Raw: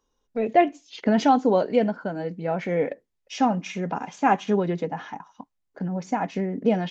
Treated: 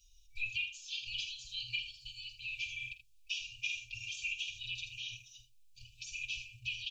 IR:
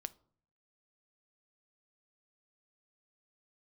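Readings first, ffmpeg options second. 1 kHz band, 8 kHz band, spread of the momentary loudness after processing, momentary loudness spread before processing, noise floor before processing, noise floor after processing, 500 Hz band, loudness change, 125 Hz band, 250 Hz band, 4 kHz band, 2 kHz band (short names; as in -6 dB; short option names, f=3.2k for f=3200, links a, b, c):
under -40 dB, n/a, 12 LU, 13 LU, -76 dBFS, -63 dBFS, under -40 dB, -15.0 dB, -24.5 dB, under -40 dB, +3.0 dB, -4.0 dB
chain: -filter_complex "[0:a]afftfilt=real='re*(1-between(b*sr/4096,120,2300))':imag='im*(1-between(b*sr/4096,120,2300))':win_size=4096:overlap=0.75,acompressor=threshold=-45dB:ratio=6,aecho=1:1:5.4:0.72,asplit=2[a][b];[b]aecho=0:1:49|80:0.2|0.224[c];[a][c]amix=inputs=2:normalize=0,acrossover=split=3500[d][e];[e]acompressor=threshold=-59dB:ratio=4:attack=1:release=60[f];[d][f]amix=inputs=2:normalize=0,volume=10dB"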